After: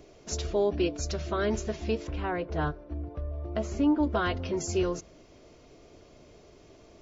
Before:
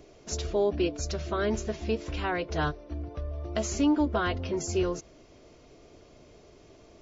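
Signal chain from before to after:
0:02.07–0:04.03: low-pass filter 1,300 Hz 6 dB per octave
on a send: convolution reverb RT60 0.70 s, pre-delay 3 ms, DRR 24 dB

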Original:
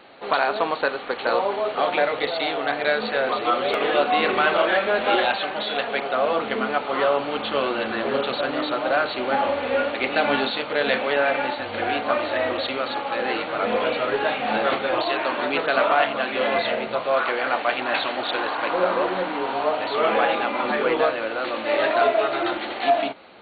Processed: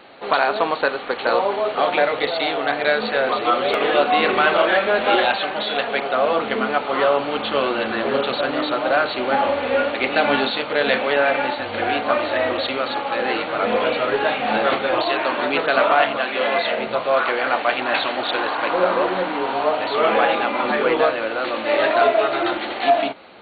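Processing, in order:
0:16.17–0:16.79: low-shelf EQ 200 Hz −11 dB
level +3 dB

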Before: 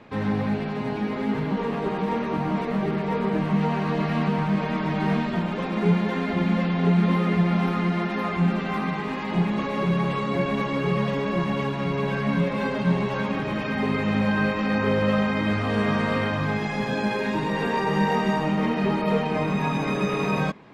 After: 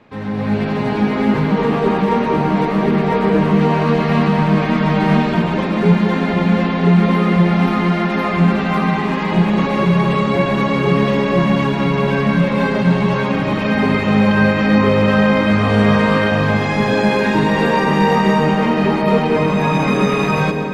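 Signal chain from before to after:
automatic gain control gain up to 11.5 dB
on a send: convolution reverb RT60 2.6 s, pre-delay 117 ms, DRR 6.5 dB
on the sum: level −1 dB

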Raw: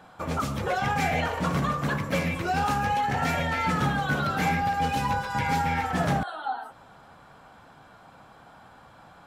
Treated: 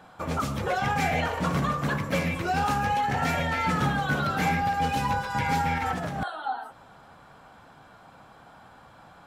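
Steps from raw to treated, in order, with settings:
0:05.78–0:06.28: compressor whose output falls as the input rises −30 dBFS, ratio −1

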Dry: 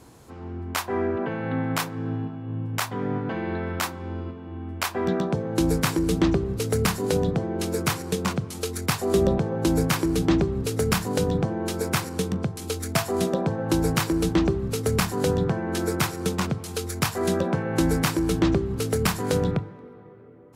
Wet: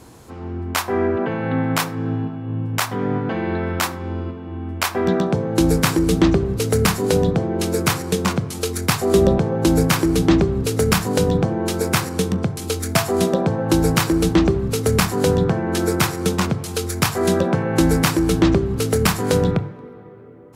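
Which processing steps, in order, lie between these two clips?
hum removal 141.2 Hz, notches 16
on a send: convolution reverb, pre-delay 61 ms, DRR 24 dB
on the sum: level +6 dB

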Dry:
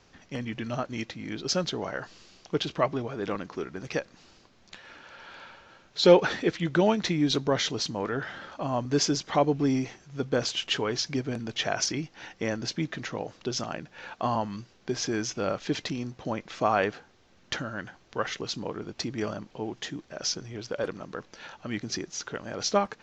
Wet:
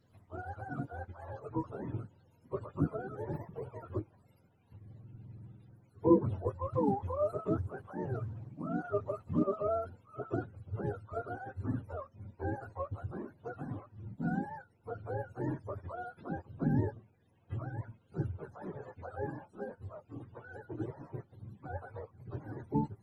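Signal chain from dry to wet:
frequency axis turned over on the octave scale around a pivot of 420 Hz
level −6 dB
Opus 20 kbit/s 48,000 Hz

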